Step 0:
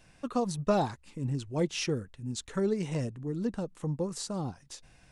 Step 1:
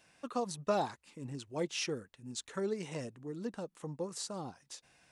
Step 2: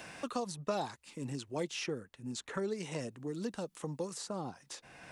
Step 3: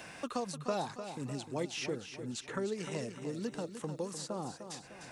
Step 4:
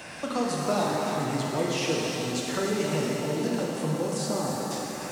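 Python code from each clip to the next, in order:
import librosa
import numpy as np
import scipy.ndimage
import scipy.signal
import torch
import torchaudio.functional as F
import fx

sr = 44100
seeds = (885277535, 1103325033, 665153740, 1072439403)

y1 = fx.highpass(x, sr, hz=410.0, slope=6)
y1 = y1 * 10.0 ** (-2.5 / 20.0)
y2 = fx.band_squash(y1, sr, depth_pct=70)
y3 = fx.echo_feedback(y2, sr, ms=302, feedback_pct=46, wet_db=-9.5)
y4 = fx.rev_shimmer(y3, sr, seeds[0], rt60_s=3.2, semitones=7, shimmer_db=-8, drr_db=-3.0)
y4 = y4 * 10.0 ** (5.5 / 20.0)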